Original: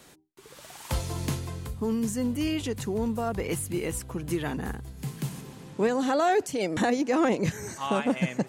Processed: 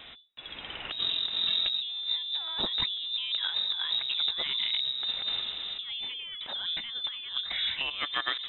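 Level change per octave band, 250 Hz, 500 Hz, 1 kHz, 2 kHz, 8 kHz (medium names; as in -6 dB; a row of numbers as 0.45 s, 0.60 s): -25.5 dB, -22.0 dB, -12.0 dB, -1.5 dB, under -40 dB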